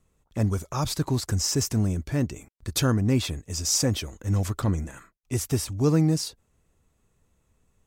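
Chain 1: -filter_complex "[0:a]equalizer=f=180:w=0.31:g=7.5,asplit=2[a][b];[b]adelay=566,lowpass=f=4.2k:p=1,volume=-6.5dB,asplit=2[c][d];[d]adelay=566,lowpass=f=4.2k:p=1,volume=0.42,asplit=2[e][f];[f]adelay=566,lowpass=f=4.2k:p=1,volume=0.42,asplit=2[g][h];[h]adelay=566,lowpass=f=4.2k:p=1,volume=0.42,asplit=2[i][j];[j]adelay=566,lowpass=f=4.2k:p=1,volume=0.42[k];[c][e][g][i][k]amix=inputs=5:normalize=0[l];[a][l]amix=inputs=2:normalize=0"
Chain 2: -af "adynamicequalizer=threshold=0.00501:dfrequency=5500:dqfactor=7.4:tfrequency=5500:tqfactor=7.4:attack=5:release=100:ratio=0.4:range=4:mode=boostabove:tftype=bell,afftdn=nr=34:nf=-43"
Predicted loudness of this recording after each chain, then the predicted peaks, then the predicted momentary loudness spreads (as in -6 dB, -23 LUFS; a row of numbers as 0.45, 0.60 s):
-20.0, -25.0 LUFS; -4.0, -8.5 dBFS; 13, 11 LU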